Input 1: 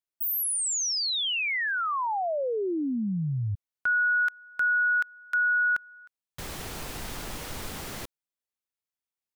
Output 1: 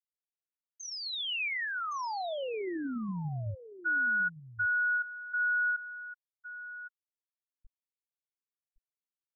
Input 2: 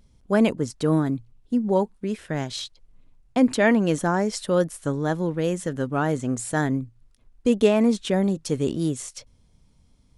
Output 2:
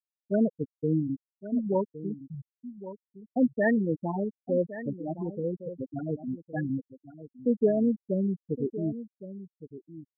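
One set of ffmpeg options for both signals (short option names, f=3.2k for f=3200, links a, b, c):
-af "afftfilt=real='re*gte(hypot(re,im),0.398)':imag='im*gte(hypot(re,im),0.398)':win_size=1024:overlap=0.75,aecho=1:1:1114:0.2,adynamicequalizer=threshold=0.0178:dfrequency=2100:dqfactor=0.7:tfrequency=2100:tqfactor=0.7:attack=5:release=100:ratio=0.375:range=2:mode=boostabove:tftype=highshelf,volume=-5dB"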